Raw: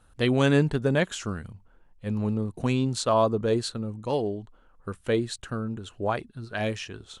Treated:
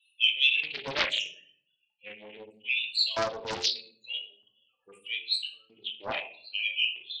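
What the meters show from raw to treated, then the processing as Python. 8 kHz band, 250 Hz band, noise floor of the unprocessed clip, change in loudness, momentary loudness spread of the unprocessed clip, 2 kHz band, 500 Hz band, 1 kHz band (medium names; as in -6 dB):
-6.0 dB, -23.5 dB, -59 dBFS, -1.5 dB, 14 LU, +4.0 dB, -13.5 dB, -8.0 dB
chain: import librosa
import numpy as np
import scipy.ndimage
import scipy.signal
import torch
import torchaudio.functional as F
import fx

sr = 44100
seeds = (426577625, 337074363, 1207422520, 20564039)

y = fx.high_shelf_res(x, sr, hz=1900.0, db=11.5, q=3.0)
y = fx.spec_topn(y, sr, count=16)
y = fx.filter_lfo_highpass(y, sr, shape='square', hz=0.79, low_hz=810.0, high_hz=3200.0, q=1.4)
y = fx.room_shoebox(y, sr, seeds[0], volume_m3=68.0, walls='mixed', distance_m=0.67)
y = fx.doppler_dist(y, sr, depth_ms=0.62)
y = y * 10.0 ** (-6.5 / 20.0)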